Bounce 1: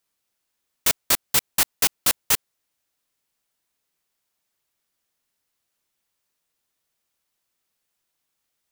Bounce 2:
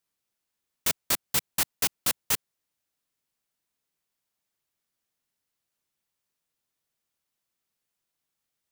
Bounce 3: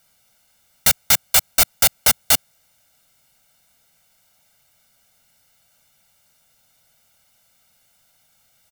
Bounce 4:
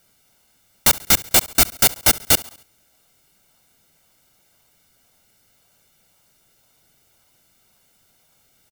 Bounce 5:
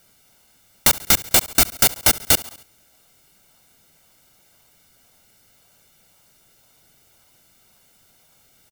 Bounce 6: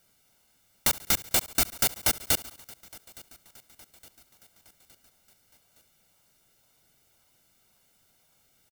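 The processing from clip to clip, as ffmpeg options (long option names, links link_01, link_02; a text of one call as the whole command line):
ffmpeg -i in.wav -af "equalizer=frequency=150:width=0.76:gain=4,volume=-6dB" out.wav
ffmpeg -i in.wav -af "aeval=exprs='0.316*sin(PI/2*7.08*val(0)/0.316)':channel_layout=same,aecho=1:1:1.4:0.84,volume=-1dB" out.wav
ffmpeg -i in.wav -filter_complex "[0:a]aecho=1:1:69|138|207|276:0.0944|0.0472|0.0236|0.0118,asplit=2[link_01][link_02];[link_02]acrusher=samples=36:mix=1:aa=0.000001:lfo=1:lforange=36:lforate=1.9,volume=-11.5dB[link_03];[link_01][link_03]amix=inputs=2:normalize=0" out.wav
ffmpeg -i in.wav -af "acompressor=threshold=-18dB:ratio=2,volume=3.5dB" out.wav
ffmpeg -i in.wav -af "aecho=1:1:865|1730|2595|3460:0.0708|0.0382|0.0206|0.0111,volume=-9dB" out.wav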